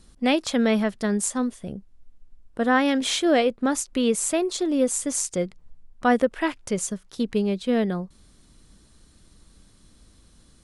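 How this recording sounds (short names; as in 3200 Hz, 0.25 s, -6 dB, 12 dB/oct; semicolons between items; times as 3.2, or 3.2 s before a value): noise floor -56 dBFS; spectral tilt -3.5 dB/oct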